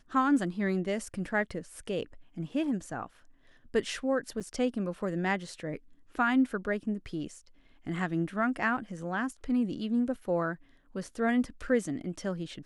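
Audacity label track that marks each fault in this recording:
4.400000	4.410000	drop-out 6.6 ms

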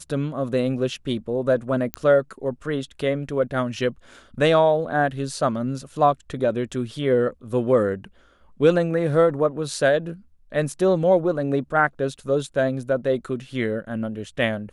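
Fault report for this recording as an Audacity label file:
1.940000	1.940000	click −10 dBFS

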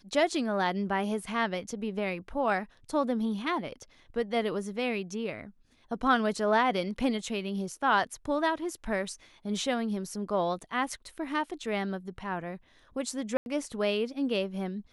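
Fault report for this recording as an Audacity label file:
13.370000	13.460000	drop-out 91 ms

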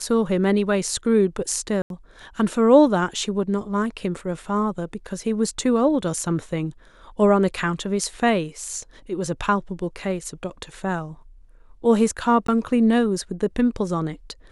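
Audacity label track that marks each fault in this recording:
1.820000	1.900000	drop-out 82 ms
12.470000	12.480000	drop-out 14 ms

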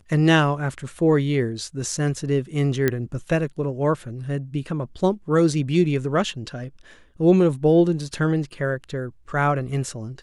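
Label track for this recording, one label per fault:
2.880000	2.880000	click −7 dBFS

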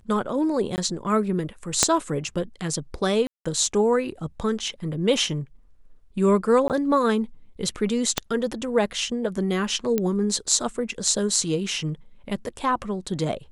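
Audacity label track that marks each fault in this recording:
0.760000	0.780000	drop-out 19 ms
1.830000	1.830000	click −2 dBFS
3.270000	3.460000	drop-out 185 ms
6.680000	6.700000	drop-out 18 ms
8.180000	8.180000	click −5 dBFS
9.980000	9.980000	click −10 dBFS

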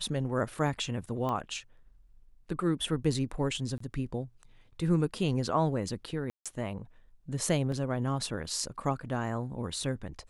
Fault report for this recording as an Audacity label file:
1.290000	1.290000	click −22 dBFS
3.780000	3.800000	drop-out 24 ms
6.300000	6.460000	drop-out 156 ms
7.720000	7.720000	drop-out 3 ms

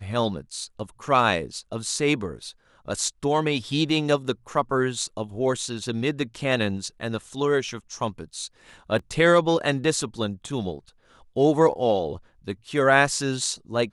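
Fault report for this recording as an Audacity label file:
6.520000	6.520000	drop-out 2.4 ms
8.990000	8.990000	drop-out 3.7 ms

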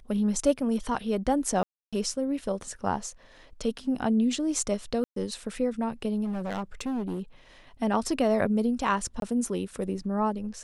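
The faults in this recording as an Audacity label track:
1.630000	1.930000	drop-out 296 ms
5.040000	5.160000	drop-out 123 ms
6.240000	7.200000	clipping −27.5 dBFS
9.200000	9.220000	drop-out 22 ms

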